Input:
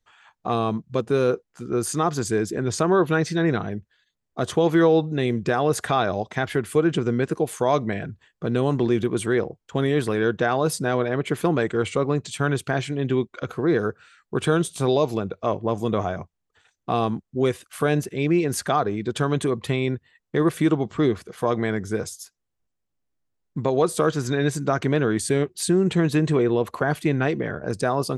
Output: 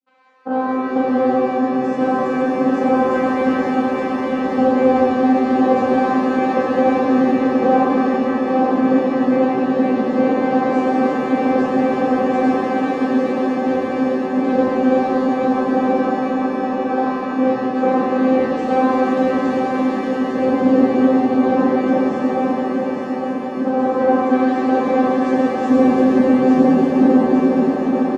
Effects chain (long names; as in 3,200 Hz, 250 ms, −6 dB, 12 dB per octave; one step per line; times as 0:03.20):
turntable brake at the end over 2.05 s
on a send: repeating echo 856 ms, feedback 59%, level −4 dB
on the sum: transient designer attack +8 dB, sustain −11 dB
channel vocoder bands 8, saw 259 Hz
spectral tilt −2 dB per octave
reverb with rising layers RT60 4 s, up +7 semitones, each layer −8 dB, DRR −10.5 dB
level −7 dB